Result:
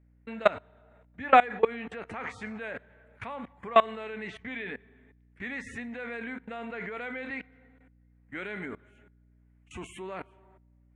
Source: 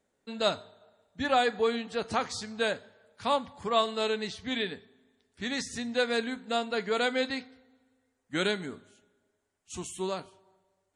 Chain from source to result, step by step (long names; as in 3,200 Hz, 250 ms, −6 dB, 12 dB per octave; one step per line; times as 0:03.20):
dynamic equaliser 150 Hz, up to −6 dB, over −56 dBFS, Q 2.7
output level in coarse steps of 23 dB
high shelf with overshoot 3,200 Hz −13.5 dB, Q 3
mains hum 60 Hz, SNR 29 dB
level +7.5 dB